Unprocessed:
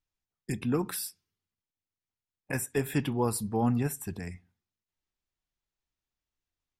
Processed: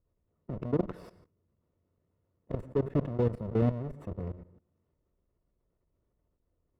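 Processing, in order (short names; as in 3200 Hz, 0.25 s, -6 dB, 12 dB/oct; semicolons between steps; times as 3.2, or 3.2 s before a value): half-waves squared off; EQ curve 240 Hz 0 dB, 510 Hz +7 dB, 8700 Hz -23 dB; on a send at -22.5 dB: reverb RT60 0.35 s, pre-delay 93 ms; on the sum: added harmonics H 3 -22 dB, 6 -25 dB, 7 -23 dB, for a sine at -11 dBFS; level quantiser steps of 23 dB; tilt -3 dB/oct; notch comb 800 Hz; fast leveller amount 50%; gain -7 dB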